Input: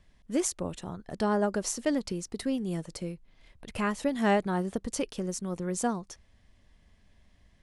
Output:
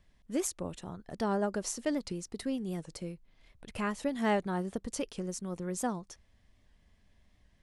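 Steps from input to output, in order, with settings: record warp 78 rpm, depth 100 cents; gain -4 dB

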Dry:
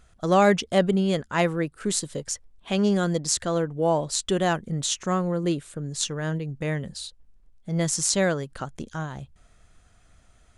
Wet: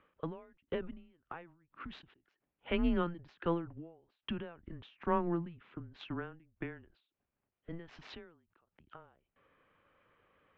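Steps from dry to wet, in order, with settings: wow and flutter 16 cents; mistuned SSB -170 Hz 260–3000 Hz; ending taper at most 110 dB/s; gain -4 dB

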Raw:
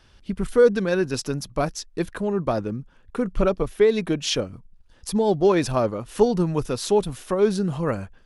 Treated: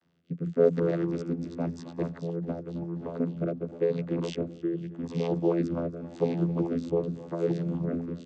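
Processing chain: echoes that change speed 0.101 s, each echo -3 st, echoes 3, each echo -6 dB; vocoder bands 16, saw 84.7 Hz; on a send: feedback echo 0.268 s, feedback 52%, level -18 dB; on the sum: rotary speaker horn 0.9 Hz; gain -5 dB

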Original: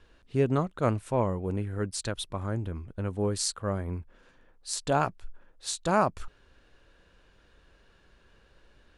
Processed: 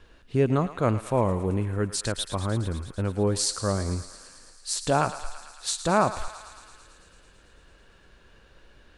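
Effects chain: in parallel at -2 dB: limiter -22 dBFS, peak gain reduction 10.5 dB; on the sum: thinning echo 0.111 s, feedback 80%, high-pass 720 Hz, level -12 dB

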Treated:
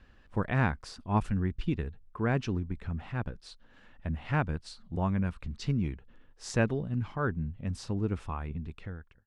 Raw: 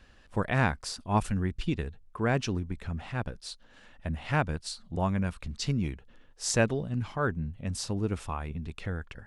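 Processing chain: ending faded out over 0.71 s; LPF 1800 Hz 6 dB/oct; bell 620 Hz -4 dB 0.96 oct

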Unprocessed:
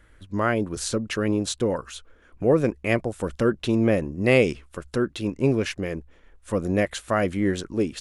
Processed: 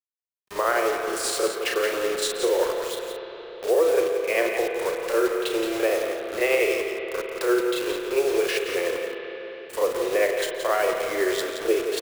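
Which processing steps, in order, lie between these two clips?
steep high-pass 350 Hz 96 dB/oct; bell 6200 Hz -6.5 dB 0.23 oct; in parallel at +0.5 dB: limiter -17 dBFS, peak gain reduction 7.5 dB; on the sum: vocal rider within 3 dB 0.5 s; bit-crush 5-bit; granular stretch 1.5×, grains 0.195 s; echo 0.173 s -7.5 dB; on a send at -4.5 dB: reverb RT60 4.7 s, pre-delay 55 ms; on the sum: gain -3.5 dB

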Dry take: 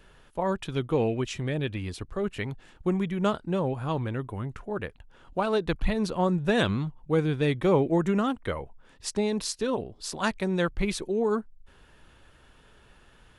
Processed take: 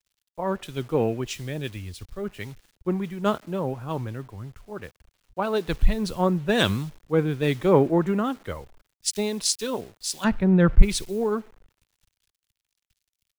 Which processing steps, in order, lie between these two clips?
on a send at -24 dB: weighting filter A + reverb RT60 1.0 s, pre-delay 7 ms; on the sum: bit-crush 8-bit; 10.24–10.82 tone controls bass +11 dB, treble -15 dB; in parallel at -7 dB: soft clip -17 dBFS, distortion -15 dB; on the sum: three-band expander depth 100%; gain -2.5 dB

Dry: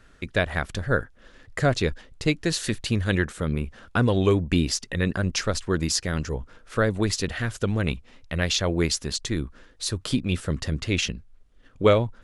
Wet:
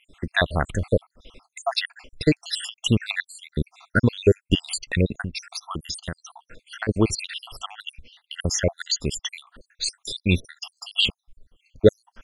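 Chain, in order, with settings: random spectral dropouts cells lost 73%; bell 3000 Hz +6 dB 0.59 oct; 5.18–6.89 compressor 4:1, threshold -34 dBFS, peak gain reduction 11.5 dB; gain +5.5 dB

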